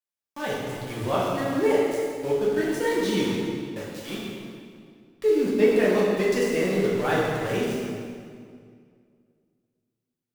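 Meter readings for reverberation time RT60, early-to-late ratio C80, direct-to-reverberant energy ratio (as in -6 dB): 2.1 s, 0.5 dB, -7.5 dB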